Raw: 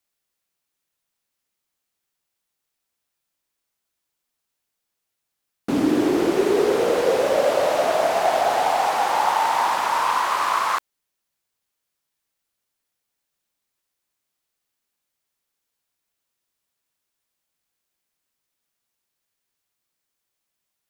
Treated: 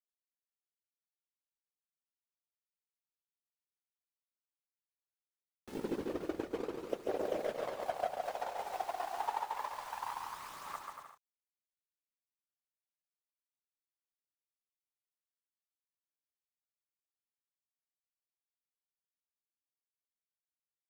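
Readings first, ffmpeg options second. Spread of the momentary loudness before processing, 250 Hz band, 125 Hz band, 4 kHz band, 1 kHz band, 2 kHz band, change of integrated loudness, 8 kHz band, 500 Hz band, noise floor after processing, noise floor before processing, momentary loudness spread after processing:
2 LU, -20.0 dB, -17.0 dB, -22.0 dB, -19.5 dB, -21.5 dB, -19.5 dB, -21.0 dB, -19.0 dB, under -85 dBFS, -81 dBFS, 8 LU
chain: -af "afftfilt=real='hypot(re,im)*cos(2*PI*random(0))':imag='hypot(re,im)*sin(2*PI*random(1))':win_size=512:overlap=0.75,agate=range=-37dB:threshold=-21dB:ratio=16:detection=peak,equalizer=f=11k:t=o:w=1.7:g=-7,bandreject=f=50:t=h:w=6,bandreject=f=100:t=h:w=6,bandreject=f=150:t=h:w=6,acompressor=mode=upward:threshold=-58dB:ratio=2.5,acrusher=bits=10:mix=0:aa=0.000001,acompressor=threshold=-48dB:ratio=6,aphaser=in_gain=1:out_gain=1:delay=2.9:decay=0.41:speed=0.28:type=triangular,aecho=1:1:140|238|306.6|354.6|388.2:0.631|0.398|0.251|0.158|0.1,volume=12.5dB"

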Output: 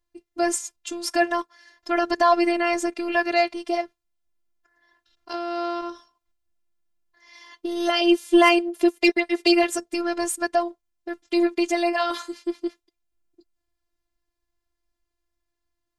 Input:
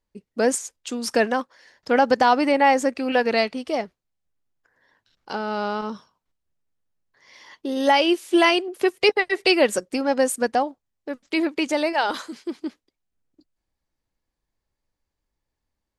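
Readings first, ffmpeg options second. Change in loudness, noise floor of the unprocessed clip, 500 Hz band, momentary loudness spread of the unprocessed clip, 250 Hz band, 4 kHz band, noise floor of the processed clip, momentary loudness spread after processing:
-1.0 dB, -83 dBFS, -2.0 dB, 16 LU, +1.5 dB, -1.5 dB, -81 dBFS, 15 LU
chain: -af "afftfilt=real='hypot(re,im)*cos(PI*b)':imag='0':win_size=512:overlap=0.75,aeval=exprs='0.631*(cos(1*acos(clip(val(0)/0.631,-1,1)))-cos(1*PI/2))+0.0501*(cos(2*acos(clip(val(0)/0.631,-1,1)))-cos(2*PI/2))+0.0398*(cos(5*acos(clip(val(0)/0.631,-1,1)))-cos(5*PI/2))':c=same,volume=1dB"

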